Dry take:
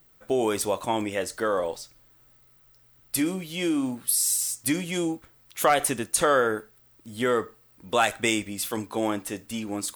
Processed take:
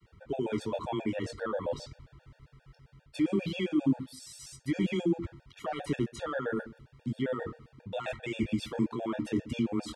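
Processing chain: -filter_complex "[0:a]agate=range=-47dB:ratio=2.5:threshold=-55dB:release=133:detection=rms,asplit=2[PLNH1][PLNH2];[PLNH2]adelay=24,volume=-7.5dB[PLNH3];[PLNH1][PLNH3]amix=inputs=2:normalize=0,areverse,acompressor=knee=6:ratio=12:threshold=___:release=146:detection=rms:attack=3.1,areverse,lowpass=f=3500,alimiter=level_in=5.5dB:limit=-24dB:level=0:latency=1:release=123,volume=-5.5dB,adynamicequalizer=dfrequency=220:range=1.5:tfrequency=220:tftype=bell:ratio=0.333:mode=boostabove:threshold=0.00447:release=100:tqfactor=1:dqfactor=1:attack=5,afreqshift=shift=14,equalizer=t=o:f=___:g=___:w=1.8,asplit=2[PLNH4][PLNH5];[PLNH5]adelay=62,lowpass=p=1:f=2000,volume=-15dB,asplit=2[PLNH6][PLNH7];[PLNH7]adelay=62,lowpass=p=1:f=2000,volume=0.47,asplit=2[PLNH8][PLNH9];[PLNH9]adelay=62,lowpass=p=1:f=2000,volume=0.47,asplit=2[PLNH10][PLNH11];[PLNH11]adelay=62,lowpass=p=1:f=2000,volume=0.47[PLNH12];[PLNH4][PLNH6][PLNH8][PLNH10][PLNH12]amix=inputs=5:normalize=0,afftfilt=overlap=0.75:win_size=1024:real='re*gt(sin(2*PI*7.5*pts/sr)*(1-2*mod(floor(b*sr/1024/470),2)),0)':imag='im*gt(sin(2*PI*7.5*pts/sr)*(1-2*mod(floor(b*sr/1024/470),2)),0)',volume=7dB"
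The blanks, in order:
-32dB, 80, 13.5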